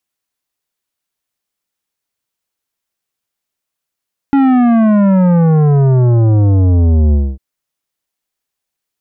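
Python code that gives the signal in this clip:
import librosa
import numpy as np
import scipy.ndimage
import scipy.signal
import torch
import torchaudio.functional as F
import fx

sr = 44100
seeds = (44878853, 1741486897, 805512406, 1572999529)

y = fx.sub_drop(sr, level_db=-8.0, start_hz=280.0, length_s=3.05, drive_db=12, fade_s=0.25, end_hz=65.0)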